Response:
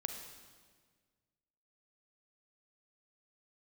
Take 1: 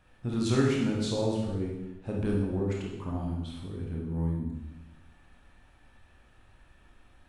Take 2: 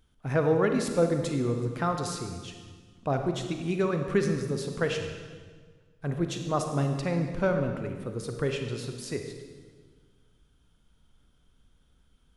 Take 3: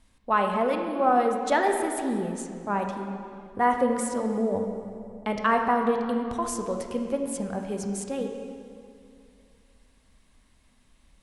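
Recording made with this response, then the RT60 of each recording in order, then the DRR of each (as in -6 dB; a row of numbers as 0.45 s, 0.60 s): 2; 1.1 s, 1.6 s, 2.4 s; -2.0 dB, 4.5 dB, 3.5 dB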